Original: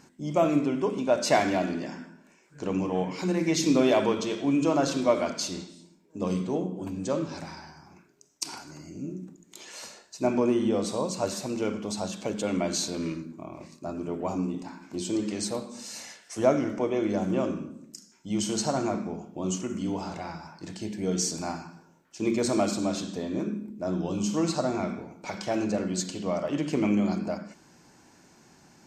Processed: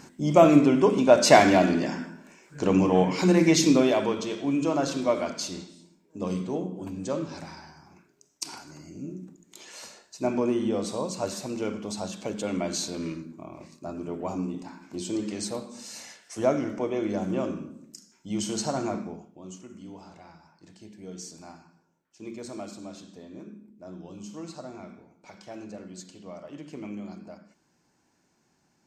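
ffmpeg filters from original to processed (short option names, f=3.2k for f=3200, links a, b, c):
-af "volume=7dB,afade=t=out:st=3.39:d=0.54:silence=0.375837,afade=t=out:st=18.98:d=0.41:silence=0.266073"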